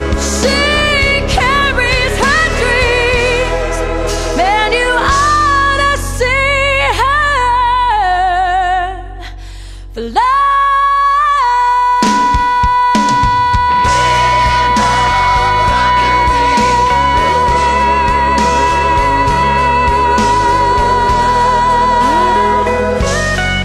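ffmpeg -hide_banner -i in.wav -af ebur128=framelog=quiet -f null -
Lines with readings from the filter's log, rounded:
Integrated loudness:
  I:         -10.9 LUFS
  Threshold: -21.0 LUFS
Loudness range:
  LRA:         2.3 LU
  Threshold: -31.0 LUFS
  LRA low:   -12.5 LUFS
  LRA high:  -10.2 LUFS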